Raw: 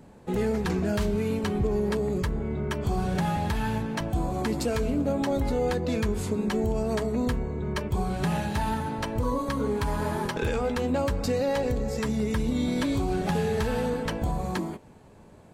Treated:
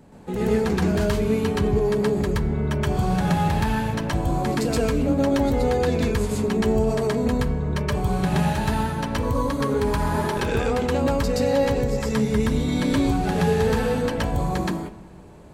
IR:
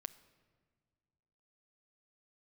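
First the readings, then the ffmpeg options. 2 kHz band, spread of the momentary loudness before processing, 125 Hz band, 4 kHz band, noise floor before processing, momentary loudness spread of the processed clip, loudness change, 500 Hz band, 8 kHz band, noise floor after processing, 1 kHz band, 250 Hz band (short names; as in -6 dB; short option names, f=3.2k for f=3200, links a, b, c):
+5.0 dB, 4 LU, +6.0 dB, +5.0 dB, -51 dBFS, 4 LU, +5.0 dB, +5.5 dB, +5.0 dB, -42 dBFS, +5.0 dB, +5.0 dB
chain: -filter_complex "[0:a]asplit=2[a][b];[1:a]atrim=start_sample=2205,adelay=123[c];[b][c]afir=irnorm=-1:irlink=0,volume=7.5dB[d];[a][d]amix=inputs=2:normalize=0"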